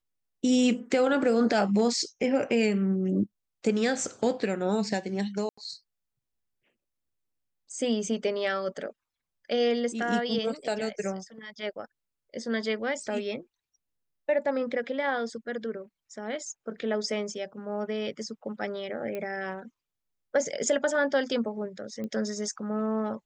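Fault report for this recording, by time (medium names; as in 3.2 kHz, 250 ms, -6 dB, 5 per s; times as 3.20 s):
5.49–5.58 s: dropout 85 ms
19.15 s: pop -22 dBFS
22.04 s: pop -25 dBFS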